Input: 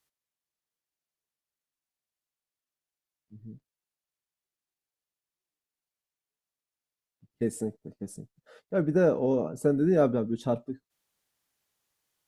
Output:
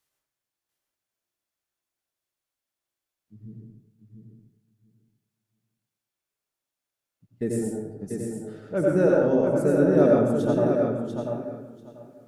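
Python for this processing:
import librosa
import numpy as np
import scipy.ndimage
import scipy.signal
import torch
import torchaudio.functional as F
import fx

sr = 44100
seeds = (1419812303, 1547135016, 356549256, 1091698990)

p1 = x + fx.echo_feedback(x, sr, ms=691, feedback_pct=17, wet_db=-5.5, dry=0)
y = fx.rev_plate(p1, sr, seeds[0], rt60_s=0.88, hf_ratio=0.5, predelay_ms=75, drr_db=-2.0)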